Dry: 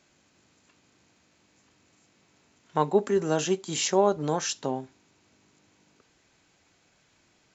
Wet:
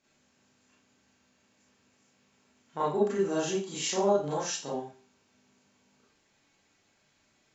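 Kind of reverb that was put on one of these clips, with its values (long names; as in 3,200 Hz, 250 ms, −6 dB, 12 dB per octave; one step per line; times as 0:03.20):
four-comb reverb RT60 0.37 s, combs from 28 ms, DRR −7.5 dB
level −12 dB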